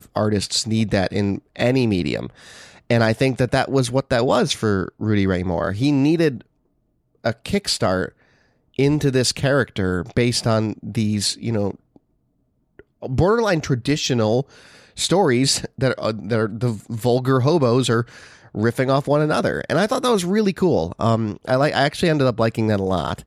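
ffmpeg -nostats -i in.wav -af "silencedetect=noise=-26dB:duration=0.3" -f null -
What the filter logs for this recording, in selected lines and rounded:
silence_start: 2.26
silence_end: 2.90 | silence_duration: 0.64
silence_start: 6.37
silence_end: 7.26 | silence_duration: 0.89
silence_start: 8.08
silence_end: 8.79 | silence_duration: 0.71
silence_start: 11.71
silence_end: 13.03 | silence_duration: 1.32
silence_start: 14.42
silence_end: 14.99 | silence_duration: 0.57
silence_start: 18.03
silence_end: 18.55 | silence_duration: 0.52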